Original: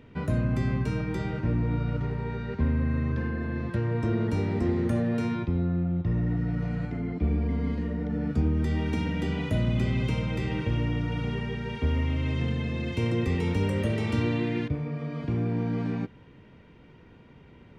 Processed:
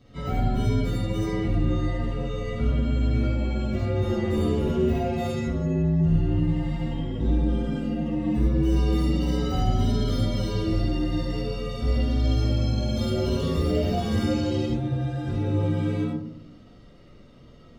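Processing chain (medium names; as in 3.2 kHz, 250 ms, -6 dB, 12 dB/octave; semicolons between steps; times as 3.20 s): frequency axis rescaled in octaves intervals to 120%; algorithmic reverb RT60 0.74 s, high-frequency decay 0.25×, pre-delay 25 ms, DRR -3 dB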